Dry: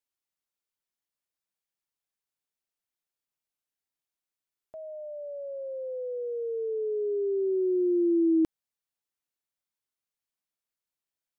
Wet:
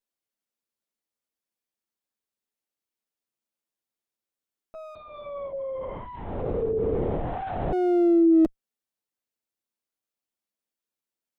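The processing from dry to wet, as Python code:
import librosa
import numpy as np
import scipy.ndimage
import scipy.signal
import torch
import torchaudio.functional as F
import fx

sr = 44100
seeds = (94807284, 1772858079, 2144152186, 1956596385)

y = fx.lower_of_two(x, sr, delay_ms=9.1)
y = fx.graphic_eq(y, sr, hz=(125, 250, 500), db=(-3, 7, 4))
y = fx.lpc_vocoder(y, sr, seeds[0], excitation='whisper', order=8, at=(4.95, 7.73))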